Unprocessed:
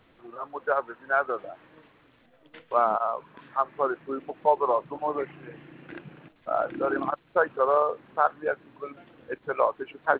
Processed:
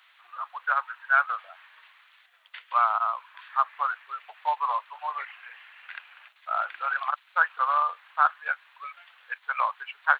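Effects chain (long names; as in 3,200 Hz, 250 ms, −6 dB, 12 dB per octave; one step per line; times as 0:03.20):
Bessel high-pass filter 1,600 Hz, order 6
level +9 dB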